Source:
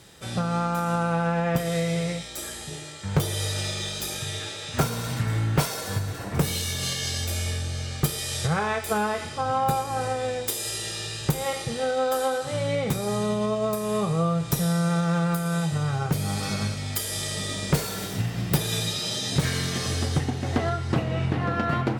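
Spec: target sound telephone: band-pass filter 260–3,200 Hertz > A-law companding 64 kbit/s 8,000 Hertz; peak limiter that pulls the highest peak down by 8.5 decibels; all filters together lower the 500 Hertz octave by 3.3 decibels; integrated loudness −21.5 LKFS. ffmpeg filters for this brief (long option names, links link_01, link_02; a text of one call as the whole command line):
ffmpeg -i in.wav -af "equalizer=frequency=500:width_type=o:gain=-3.5,alimiter=limit=-19.5dB:level=0:latency=1,highpass=260,lowpass=3200,volume=12dB" -ar 8000 -c:a pcm_alaw out.wav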